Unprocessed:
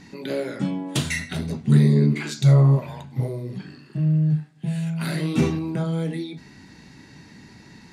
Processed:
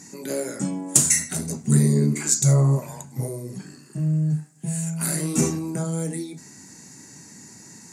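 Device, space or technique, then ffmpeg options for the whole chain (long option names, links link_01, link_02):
budget condenser microphone: -af "highpass=120,highshelf=frequency=5100:width_type=q:width=3:gain=14,volume=-1dB"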